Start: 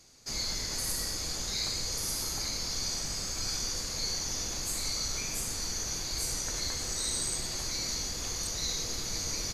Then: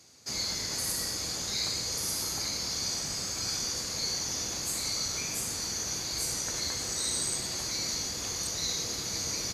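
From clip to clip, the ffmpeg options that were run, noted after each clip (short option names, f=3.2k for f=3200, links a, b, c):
-af "highpass=85,volume=1.5dB"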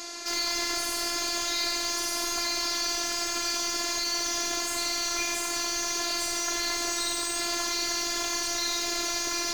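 -filter_complex "[0:a]asplit=2[a][b];[b]highpass=f=720:p=1,volume=32dB,asoftclip=type=tanh:threshold=-18.5dB[c];[a][c]amix=inputs=2:normalize=0,lowpass=f=2k:p=1,volume=-6dB,afftfilt=real='hypot(re,im)*cos(PI*b)':imag='0':win_size=512:overlap=0.75,volume=5.5dB"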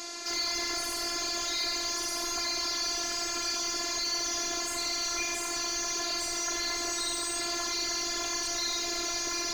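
-af "aeval=exprs='(tanh(5.62*val(0)+0.2)-tanh(0.2))/5.62':c=same"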